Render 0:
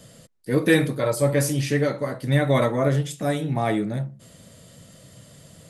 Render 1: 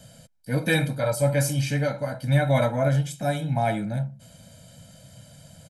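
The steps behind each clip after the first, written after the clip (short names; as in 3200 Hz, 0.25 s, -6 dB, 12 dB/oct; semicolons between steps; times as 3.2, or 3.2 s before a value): comb 1.3 ms, depth 98%; gain -4 dB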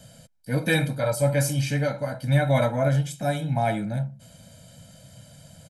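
nothing audible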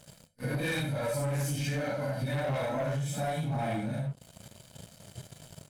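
phase scrambler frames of 0.2 s; sample leveller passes 3; compressor, threshold -22 dBFS, peak gain reduction 10 dB; gain -8 dB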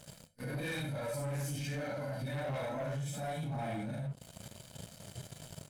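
limiter -34 dBFS, peak gain reduction 10 dB; gain +1 dB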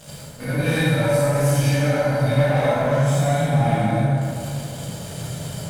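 plate-style reverb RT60 2.6 s, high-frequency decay 0.55×, DRR -8.5 dB; gain +8.5 dB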